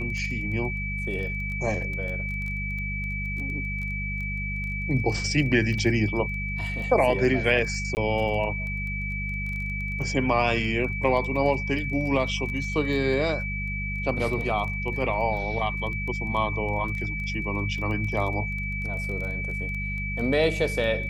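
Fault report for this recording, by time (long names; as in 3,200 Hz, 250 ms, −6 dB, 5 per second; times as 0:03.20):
surface crackle 13 per second −32 dBFS
mains hum 50 Hz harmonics 4 −32 dBFS
whistle 2,300 Hz −31 dBFS
0:07.95–0:07.97: drop-out 19 ms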